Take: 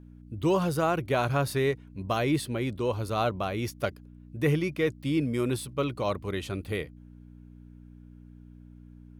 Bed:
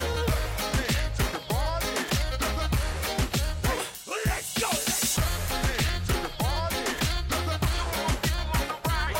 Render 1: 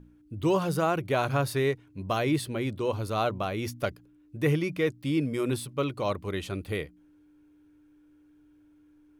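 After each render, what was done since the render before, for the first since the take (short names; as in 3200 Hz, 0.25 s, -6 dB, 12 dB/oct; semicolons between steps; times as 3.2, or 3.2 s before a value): de-hum 60 Hz, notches 4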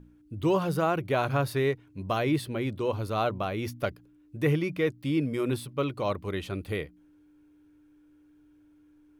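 dynamic EQ 7700 Hz, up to -6 dB, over -54 dBFS, Q 0.86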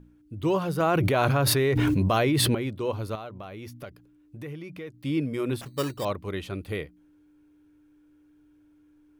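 0.8–2.55 fast leveller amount 100%; 3.15–4.94 compressor 3:1, threshold -39 dBFS; 5.61–6.05 sample-rate reducer 4200 Hz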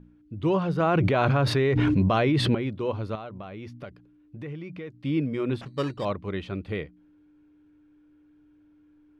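LPF 3800 Hz 12 dB/oct; bell 190 Hz +4 dB 0.68 oct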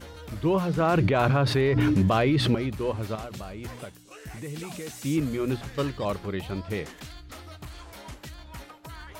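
add bed -15.5 dB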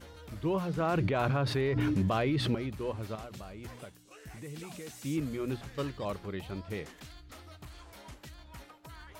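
gain -7 dB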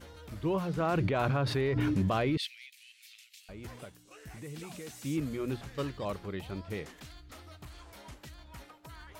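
2.37–3.49 steep high-pass 2100 Hz 48 dB/oct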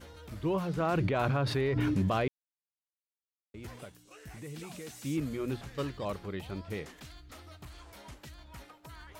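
2.28–3.54 mute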